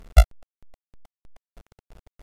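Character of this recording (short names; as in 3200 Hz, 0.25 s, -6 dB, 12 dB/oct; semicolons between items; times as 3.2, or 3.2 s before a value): a buzz of ramps at a fixed pitch in blocks of 64 samples; tremolo saw down 3.2 Hz, depth 100%; a quantiser's noise floor 10-bit, dither none; AAC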